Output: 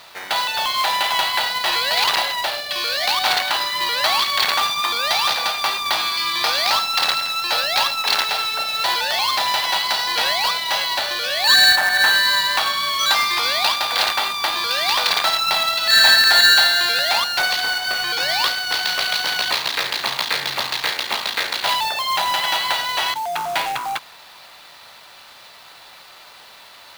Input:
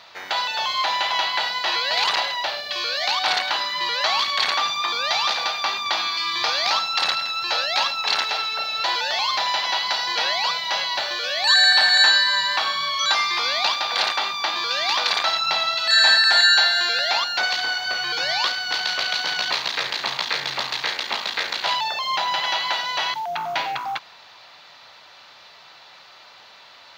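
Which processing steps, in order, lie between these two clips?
0:11.75–0:12.22: low-pass filter 1,800 Hz → 4,100 Hz 12 dB per octave
log-companded quantiser 4 bits
level +2.5 dB

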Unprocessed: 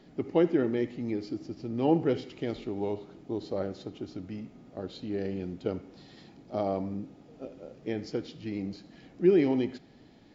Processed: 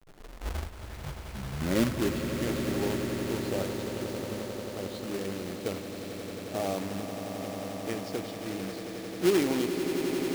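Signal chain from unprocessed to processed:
turntable start at the beginning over 2.56 s
low-shelf EQ 80 Hz +10.5 dB
log-companded quantiser 4 bits
low-shelf EQ 200 Hz −9 dB
echo that builds up and dies away 89 ms, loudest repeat 8, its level −11 dB
level −1 dB

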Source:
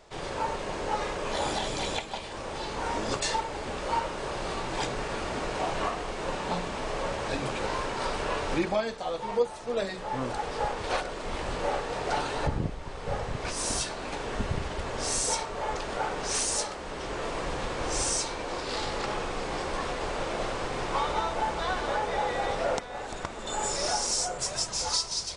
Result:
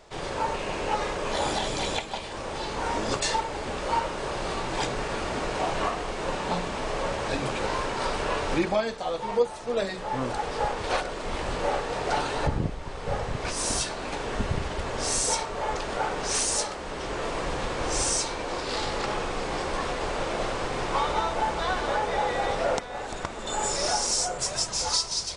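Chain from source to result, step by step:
0:00.54–0:00.95: parametric band 2,600 Hz +6.5 dB 0.37 octaves
level +2.5 dB

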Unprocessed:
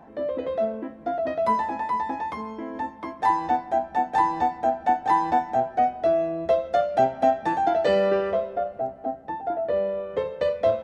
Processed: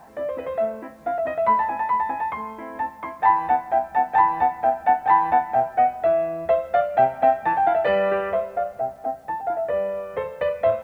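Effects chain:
drawn EQ curve 140 Hz 0 dB, 300 Hz −7 dB, 800 Hz +4 dB, 2,400 Hz +5 dB, 5,300 Hz −19 dB
bit-depth reduction 10 bits, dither none

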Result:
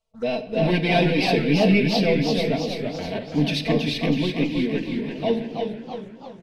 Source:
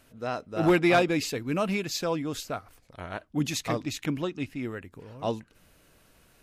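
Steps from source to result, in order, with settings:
noise gate −52 dBFS, range −16 dB
leveller curve on the samples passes 2
low-pass filter 6,600 Hz 12 dB per octave
comb filter 4.5 ms, depth 92%
repeating echo 344 ms, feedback 39%, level −9 dB
on a send at −9.5 dB: convolution reverb RT60 1.1 s, pre-delay 6 ms
on the sum: phaser swept by the level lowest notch 280 Hz, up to 1,300 Hz, full sweep at −26.5 dBFS
feedback echo with a swinging delay time 326 ms, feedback 46%, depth 160 cents, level −6 dB

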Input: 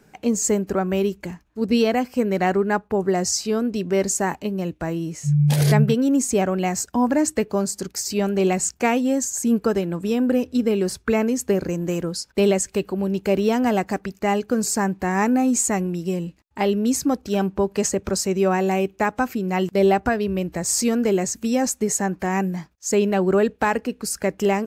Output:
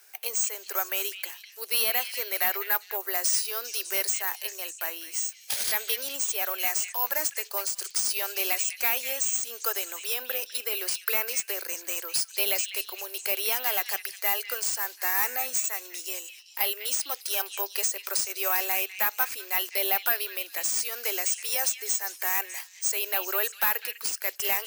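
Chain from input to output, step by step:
inverse Chebyshev high-pass filter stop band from 180 Hz, stop band 40 dB
first difference
downward compressor 3 to 1, threshold −32 dBFS, peak gain reduction 10.5 dB
mid-hump overdrive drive 19 dB, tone 4,600 Hz, clips at −15 dBFS
bad sample-rate conversion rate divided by 3×, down filtered, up zero stuff
echo through a band-pass that steps 201 ms, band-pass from 2,900 Hz, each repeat 0.7 octaves, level −7 dB

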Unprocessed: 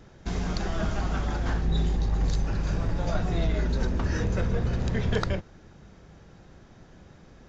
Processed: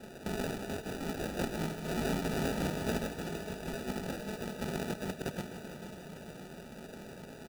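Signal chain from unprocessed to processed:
high-pass filter 220 Hz 12 dB per octave
mains-hum notches 60/120/180/240/300/360 Hz
comb filter 4.9 ms, depth 90%
compressor whose output falls as the input rises −36 dBFS, ratio −0.5
decimation without filtering 41×
on a send: echo machine with several playback heads 153 ms, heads all three, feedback 67%, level −17.5 dB

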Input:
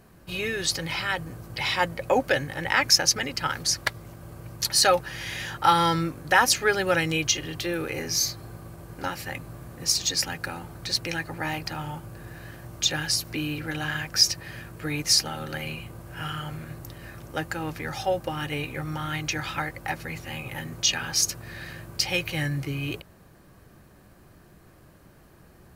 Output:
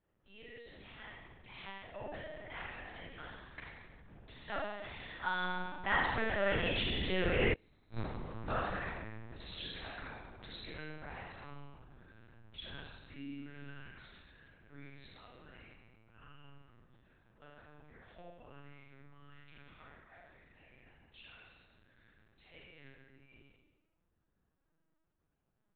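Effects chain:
source passing by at 0:07.73, 25 m/s, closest 7.2 metres
flutter between parallel walls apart 6.1 metres, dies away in 0.96 s
comb and all-pass reverb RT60 1.1 s, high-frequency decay 0.55×, pre-delay 10 ms, DRR 2 dB
gate with flip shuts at −17 dBFS, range −34 dB
linear-prediction vocoder at 8 kHz pitch kept

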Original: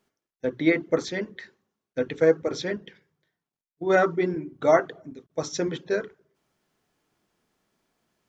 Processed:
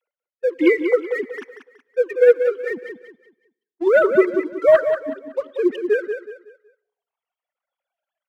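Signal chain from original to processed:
three sine waves on the formant tracks
leveller curve on the samples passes 1
reverb reduction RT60 1.5 s
repeating echo 186 ms, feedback 32%, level −8 dB
on a send at −22.5 dB: convolution reverb RT60 0.70 s, pre-delay 66 ms
on the sum: level +4 dB

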